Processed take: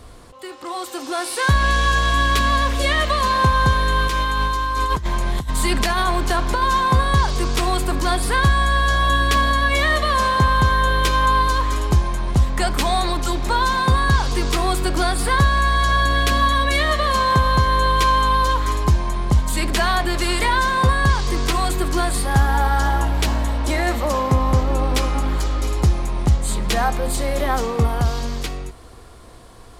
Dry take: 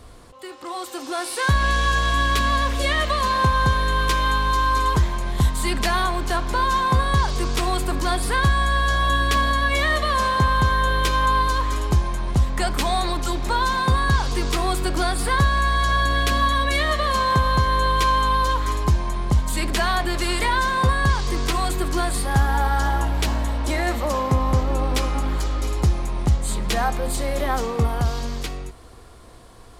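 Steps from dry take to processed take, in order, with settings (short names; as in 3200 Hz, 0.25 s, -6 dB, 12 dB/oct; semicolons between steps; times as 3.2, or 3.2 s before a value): 4.06–6.63 negative-ratio compressor -21 dBFS, ratio -0.5; gain +2.5 dB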